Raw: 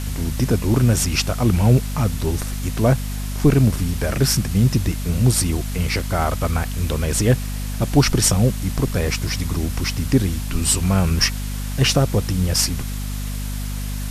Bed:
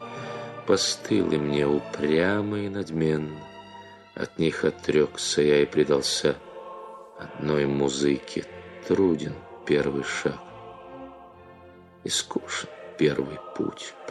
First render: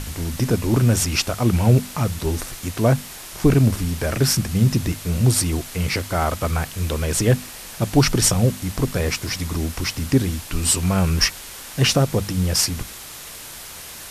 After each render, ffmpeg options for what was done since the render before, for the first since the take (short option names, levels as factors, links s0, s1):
-af "bandreject=f=50:t=h:w=6,bandreject=f=100:t=h:w=6,bandreject=f=150:t=h:w=6,bandreject=f=200:t=h:w=6,bandreject=f=250:t=h:w=6"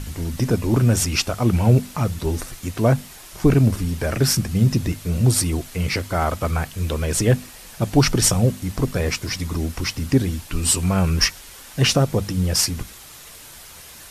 -af "afftdn=nr=6:nf=-37"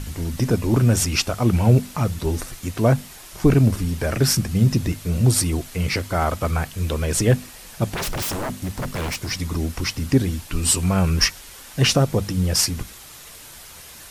-filter_complex "[0:a]asettb=1/sr,asplit=3[s0][s1][s2];[s0]atrim=end=7.944[s3];[s1]atrim=start=7.94:end=9.31,asetpts=PTS-STARTPTS,afade=t=in:d=0.004:c=qsin,afade=t=out:st=1.366:d=0.004:c=qsin,aeval=exprs='0.0891*(abs(mod(val(0)/0.0891+3,4)-2)-1)':c=same[s4];[s2]atrim=start=9.306[s5];[s3][s4]acrossfade=d=0.004:c1=hsin:c2=qsin[s6];[s6][s5]acrossfade=d=0.004:c1=qsin:c2=hsin"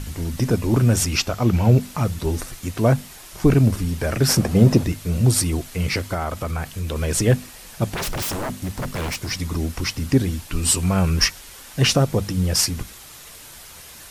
-filter_complex "[0:a]asettb=1/sr,asplit=3[s0][s1][s2];[s0]atrim=end=1.174[s3];[s1]atrim=start=1.17:end=1.81,asetpts=PTS-STARTPTS,afade=t=in:d=0.004:c=qsin,afade=t=out:st=0.636:d=0.004:c=qsin,equalizer=f=9400:t=o:w=0.32:g=-10[s4];[s2]atrim=start=1.806[s5];[s3][s4]acrossfade=d=0.004:c1=hsin:c2=qsin[s6];[s6][s5]acrossfade=d=0.004:c1=qsin:c2=hsin,asettb=1/sr,asplit=3[s7][s8][s9];[s7]atrim=end=4.294[s10];[s8]atrim=start=4.29:end=4.84,asetpts=PTS-STARTPTS,afade=t=in:d=0.004:c=qsin,afade=t=out:st=0.546:d=0.004:c=qsin,equalizer=f=590:t=o:w=2.1:g=14.5[s11];[s9]atrim=start=4.836[s12];[s10][s11]acrossfade=d=0.004:c1=hsin:c2=qsin[s13];[s13][s12]acrossfade=d=0.004:c1=qsin:c2=hsin,asettb=1/sr,asplit=3[s14][s15][s16];[s14]atrim=end=6.144[s17];[s15]atrim=start=6.14:end=6.96,asetpts=PTS-STARTPTS,afade=t=in:d=0.004:c=qsin,afade=t=out:st=0.816:d=0.004:c=qsin,acompressor=threshold=0.0631:ratio=2:attack=3.2:release=140:knee=1:detection=peak[s18];[s16]atrim=start=6.956[s19];[s17][s18]acrossfade=d=0.004:c1=hsin:c2=qsin[s20];[s20][s19]acrossfade=d=0.004:c1=qsin:c2=hsin"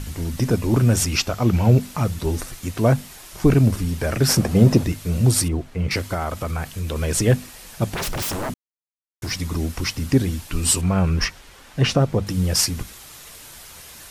-filter_complex "[0:a]asettb=1/sr,asplit=3[s0][s1][s2];[s0]atrim=end=5.484[s3];[s1]atrim=start=5.48:end=5.91,asetpts=PTS-STARTPTS,afade=t=in:d=0.004:c=qsin,afade=t=out:st=0.426:d=0.004:c=qsin,lowpass=f=1100:p=1[s4];[s2]atrim=start=5.906[s5];[s3][s4]acrossfade=d=0.004:c1=hsin:c2=qsin[s6];[s6][s5]acrossfade=d=0.004:c1=qsin:c2=hsin,asettb=1/sr,asplit=3[s7][s8][s9];[s7]atrim=end=10.814[s10];[s8]atrim=start=10.81:end=12.27,asetpts=PTS-STARTPTS,afade=t=in:d=0.004:c=qsin,afade=t=out:st=1.456:d=0.004:c=qsin,lowpass=f=2500:p=1[s11];[s9]atrim=start=12.266[s12];[s10][s11]acrossfade=d=0.004:c1=hsin:c2=qsin[s13];[s13][s12]acrossfade=d=0.004:c1=qsin:c2=hsin,asplit=3[s14][s15][s16];[s14]atrim=end=8.54,asetpts=PTS-STARTPTS,afade=t=out:st=8.536:d=0.004:c=hsin[s17];[s15]atrim=start=8.54:end=9.22,asetpts=PTS-STARTPTS,volume=0[s18];[s16]atrim=start=9.22,asetpts=PTS-STARTPTS,afade=t=in:d=0.004:c=hsin[s19];[s17][s18][s19]concat=n=3:v=0:a=1"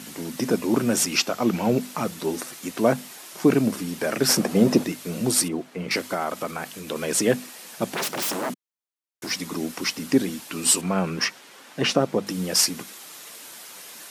-af "highpass=f=200:w=0.5412,highpass=f=200:w=1.3066"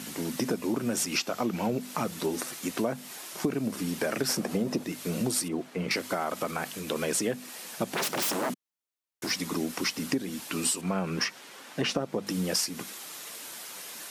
-af "acompressor=threshold=0.0562:ratio=10"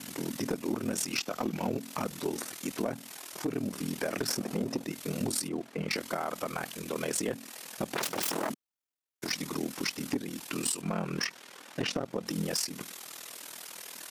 -af "aeval=exprs='val(0)*sin(2*PI*20*n/s)':c=same,asoftclip=type=hard:threshold=0.075"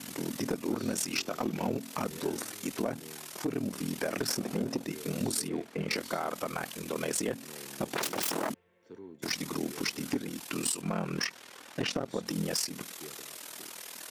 -filter_complex "[1:a]volume=0.0473[s0];[0:a][s0]amix=inputs=2:normalize=0"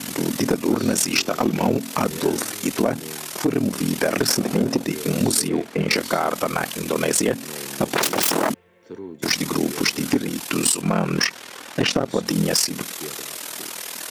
-af "volume=3.98"